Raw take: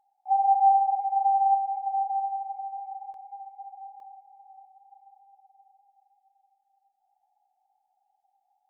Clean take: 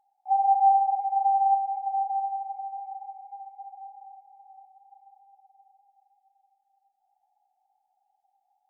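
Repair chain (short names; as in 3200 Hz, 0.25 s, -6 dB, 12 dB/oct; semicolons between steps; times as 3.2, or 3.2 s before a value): interpolate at 3.14/4, 1.7 ms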